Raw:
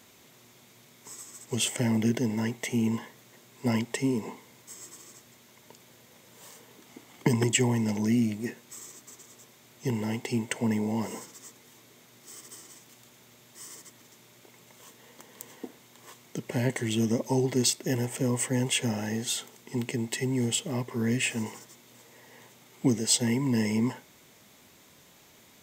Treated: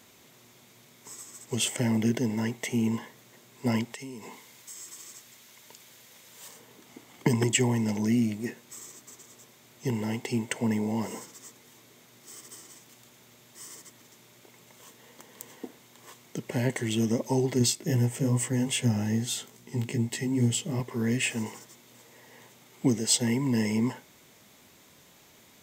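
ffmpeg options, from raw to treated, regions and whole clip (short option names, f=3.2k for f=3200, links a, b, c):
-filter_complex "[0:a]asettb=1/sr,asplit=3[a][b][c];[a]atrim=end=3.934[d];[b]atrim=start=3.93:end=6.48,asetpts=PTS-STARTPTS,afade=t=in:d=0.004:c=qsin,afade=t=out:st=2.546:d=0.004:c=qsin,tiltshelf=f=1.1k:g=-5,acompressor=threshold=-39dB:ratio=4:attack=3.2:release=140:knee=1:detection=peak[e];[c]atrim=start=6.476[f];[d][e]acrossfade=d=0.004:c1=hsin:c2=qsin[g];[g][f]acrossfade=d=0.004:c1=qsin:c2=hsin,asettb=1/sr,asplit=3[h][i][j];[h]atrim=end=17.594[k];[i]atrim=start=17.59:end=20.8,asetpts=PTS-STARTPTS,afade=t=in:d=0.004:c=qsin,afade=t=out:st=3.206:d=0.004:c=qsin,bass=f=250:g=8,treble=f=4k:g=2,flanger=delay=16:depth=3.6:speed=2.4[l];[j]atrim=start=20.796[m];[k][l]acrossfade=d=0.004:c1=hsin:c2=qsin[n];[n][m]acrossfade=d=0.004:c1=qsin:c2=hsin"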